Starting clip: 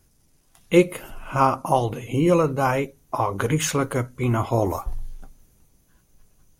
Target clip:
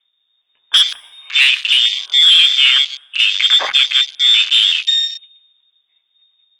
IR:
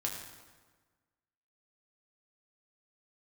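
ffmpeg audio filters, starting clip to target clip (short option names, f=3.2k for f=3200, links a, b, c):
-filter_complex "[0:a]lowpass=f=3.1k:t=q:w=0.5098,lowpass=f=3.1k:t=q:w=0.6013,lowpass=f=3.1k:t=q:w=0.9,lowpass=f=3.1k:t=q:w=2.563,afreqshift=-3700,aeval=exprs='0.75*sin(PI/2*3.16*val(0)/0.75)':c=same,asplit=2[a][b];[1:a]atrim=start_sample=2205,adelay=122[c];[b][c]afir=irnorm=-1:irlink=0,volume=-14.5dB[d];[a][d]amix=inputs=2:normalize=0,afwtdn=0.178,volume=-2dB"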